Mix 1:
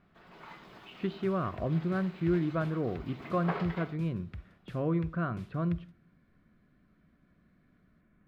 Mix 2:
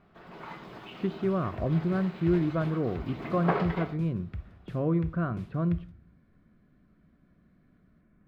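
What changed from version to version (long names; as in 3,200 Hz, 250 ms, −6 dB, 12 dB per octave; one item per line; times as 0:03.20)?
first sound +6.0 dB
second sound: send on
master: add tilt shelving filter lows +3.5 dB, about 1,200 Hz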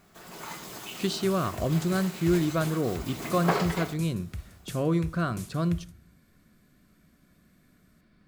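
speech: remove high-frequency loss of the air 400 metres
master: remove high-frequency loss of the air 380 metres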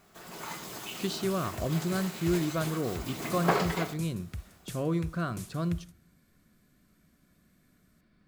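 speech −4.0 dB
second sound: send −11.0 dB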